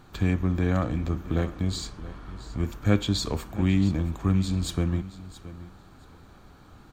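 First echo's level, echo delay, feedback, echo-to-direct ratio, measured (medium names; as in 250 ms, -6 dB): -16.0 dB, 673 ms, 17%, -16.0 dB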